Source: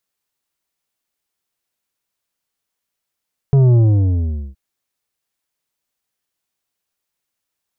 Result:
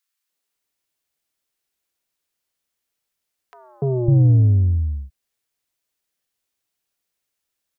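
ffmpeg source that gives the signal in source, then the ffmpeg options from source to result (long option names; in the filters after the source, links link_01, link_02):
-f lavfi -i "aevalsrc='0.355*clip((1.02-t)/0.8,0,1)*tanh(2.66*sin(2*PI*140*1.02/log(65/140)*(exp(log(65/140)*t/1.02)-1)))/tanh(2.66)':duration=1.02:sample_rate=44100"
-filter_complex "[0:a]acrossover=split=170|1000[link_01][link_02][link_03];[link_02]adelay=290[link_04];[link_01]adelay=550[link_05];[link_05][link_04][link_03]amix=inputs=3:normalize=0"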